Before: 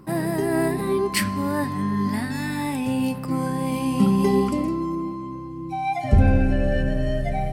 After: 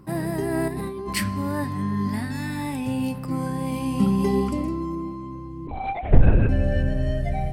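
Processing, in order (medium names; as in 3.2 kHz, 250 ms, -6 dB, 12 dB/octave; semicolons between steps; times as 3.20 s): peaking EQ 71 Hz +9.5 dB 1.4 oct; 0.68–1.13 s: compressor with a negative ratio -27 dBFS, ratio -1; 5.67–6.49 s: LPC vocoder at 8 kHz whisper; trim -3.5 dB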